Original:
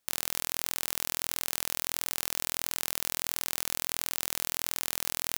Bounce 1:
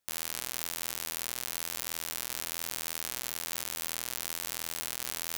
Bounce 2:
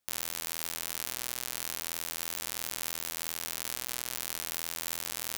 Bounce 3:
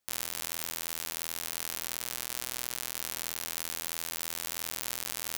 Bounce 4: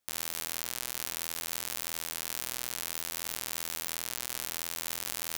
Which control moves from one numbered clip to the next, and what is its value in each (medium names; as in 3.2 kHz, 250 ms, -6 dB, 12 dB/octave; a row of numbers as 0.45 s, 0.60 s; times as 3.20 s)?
flange, rate: 1.1 Hz, 0.38 Hz, 0.2 Hz, 0.59 Hz